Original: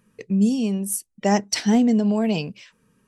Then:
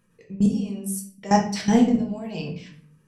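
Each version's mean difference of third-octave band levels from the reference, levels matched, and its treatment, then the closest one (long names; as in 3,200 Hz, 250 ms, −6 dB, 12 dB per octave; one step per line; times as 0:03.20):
6.5 dB: output level in coarse steps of 17 dB
rectangular room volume 61 cubic metres, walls mixed, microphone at 0.72 metres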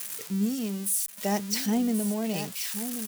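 9.5 dB: spike at every zero crossing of −16.5 dBFS
single-tap delay 1,082 ms −10 dB
level −8.5 dB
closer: first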